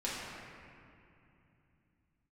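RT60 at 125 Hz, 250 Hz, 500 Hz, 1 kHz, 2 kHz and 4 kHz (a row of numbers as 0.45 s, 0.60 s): 4.6 s, 3.9 s, 2.8 s, 2.7 s, 2.6 s, 1.7 s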